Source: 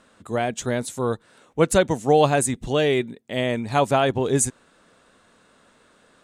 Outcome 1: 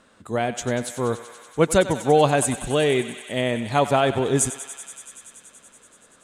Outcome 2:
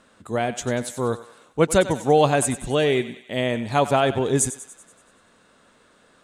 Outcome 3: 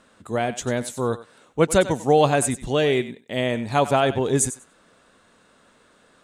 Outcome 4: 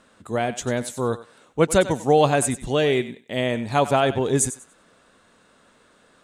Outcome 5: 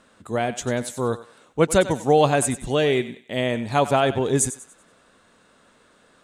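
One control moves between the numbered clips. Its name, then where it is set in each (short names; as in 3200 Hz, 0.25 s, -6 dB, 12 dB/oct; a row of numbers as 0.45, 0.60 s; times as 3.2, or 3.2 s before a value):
thinning echo, feedback: 86, 56, 15, 24, 37%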